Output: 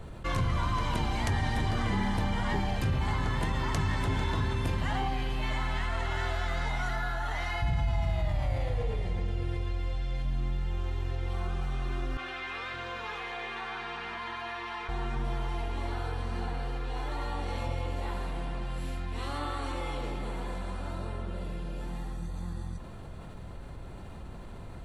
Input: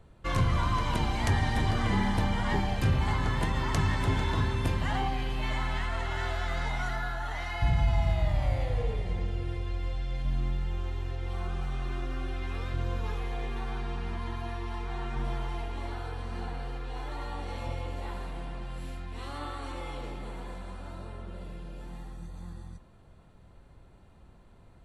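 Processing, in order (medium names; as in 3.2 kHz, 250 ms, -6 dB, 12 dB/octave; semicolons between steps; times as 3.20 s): 12.17–14.89 s: band-pass filter 2 kHz, Q 0.77; level flattener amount 50%; trim -4.5 dB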